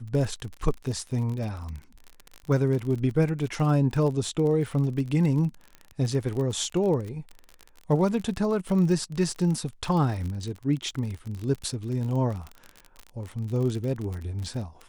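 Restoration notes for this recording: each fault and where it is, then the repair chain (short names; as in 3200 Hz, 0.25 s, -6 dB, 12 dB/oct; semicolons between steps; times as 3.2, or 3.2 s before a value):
crackle 38/s -31 dBFS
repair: de-click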